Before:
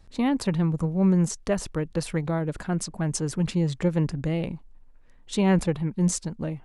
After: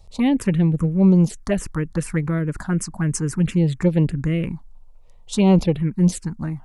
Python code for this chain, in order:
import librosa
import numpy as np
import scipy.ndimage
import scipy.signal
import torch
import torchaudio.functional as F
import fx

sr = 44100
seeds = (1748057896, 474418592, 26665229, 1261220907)

y = fx.env_phaser(x, sr, low_hz=260.0, high_hz=1700.0, full_db=-17.5)
y = F.gain(torch.from_numpy(y), 6.5).numpy()